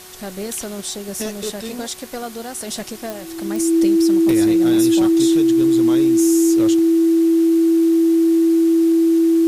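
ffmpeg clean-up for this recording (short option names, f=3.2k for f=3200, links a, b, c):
-af "adeclick=t=4,bandreject=f=368.4:t=h:w=4,bandreject=f=736.8:t=h:w=4,bandreject=f=1.1052k:t=h:w=4,bandreject=f=1.4736k:t=h:w=4,bandreject=f=1.842k:t=h:w=4,bandreject=f=330:w=30,afwtdn=0.011"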